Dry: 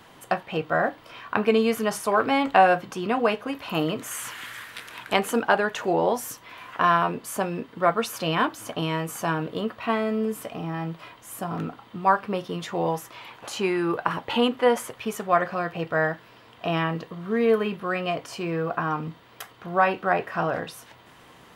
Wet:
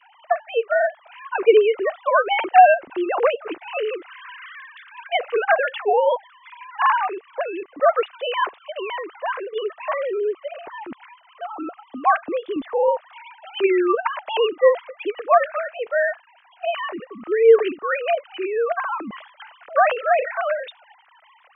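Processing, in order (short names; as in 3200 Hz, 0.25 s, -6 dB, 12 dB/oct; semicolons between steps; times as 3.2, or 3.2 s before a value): sine-wave speech; 12.56–12.98 tilt -4.5 dB/oct; 18.87–20.54 sustainer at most 95 dB/s; gain +4 dB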